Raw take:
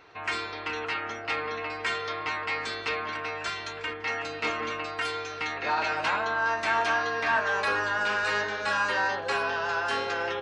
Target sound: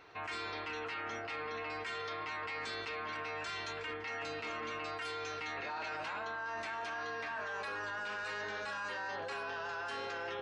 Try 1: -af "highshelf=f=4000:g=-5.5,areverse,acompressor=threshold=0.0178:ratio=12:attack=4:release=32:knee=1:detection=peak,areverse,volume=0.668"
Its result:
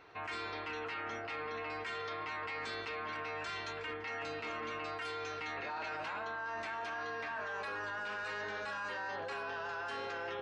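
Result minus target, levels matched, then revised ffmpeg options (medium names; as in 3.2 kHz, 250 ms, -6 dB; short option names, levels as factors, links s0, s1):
8 kHz band -3.0 dB
-af "areverse,acompressor=threshold=0.0178:ratio=12:attack=4:release=32:knee=1:detection=peak,areverse,volume=0.668"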